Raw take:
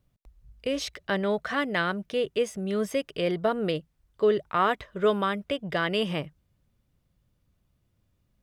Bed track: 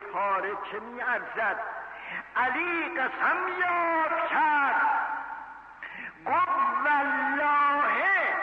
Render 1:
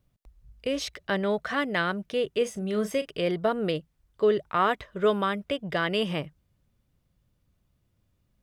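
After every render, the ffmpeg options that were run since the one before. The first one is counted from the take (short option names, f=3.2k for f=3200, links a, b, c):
-filter_complex "[0:a]asettb=1/sr,asplit=3[a][b][c];[a]atrim=end=2.364[d];[b]atrim=start=2.36:end=3.11,asetpts=PTS-STARTPTS,afade=t=in:d=0.004:c=qsin,afade=t=out:st=0.746:d=0.004:c=qsin,asplit=2[e][f];[f]adelay=38,volume=-12dB[g];[e][g]amix=inputs=2:normalize=0,atrim=end_sample=33075[h];[c]atrim=start=3.106[i];[d][h]acrossfade=d=0.004:c1=hsin:c2=qsin[j];[j][i]acrossfade=d=0.004:c1=qsin:c2=hsin"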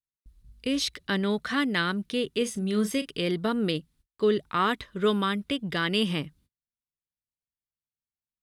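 -af "agate=range=-37dB:threshold=-58dB:ratio=16:detection=peak,equalizer=f=250:t=o:w=0.67:g=7,equalizer=f=630:t=o:w=0.67:g=-10,equalizer=f=4k:t=o:w=0.67:g=7,equalizer=f=10k:t=o:w=0.67:g=8"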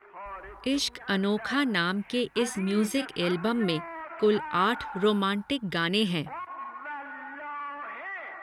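-filter_complex "[1:a]volume=-13.5dB[a];[0:a][a]amix=inputs=2:normalize=0"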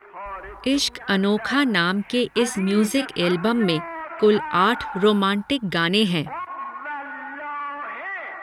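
-af "volume=6.5dB"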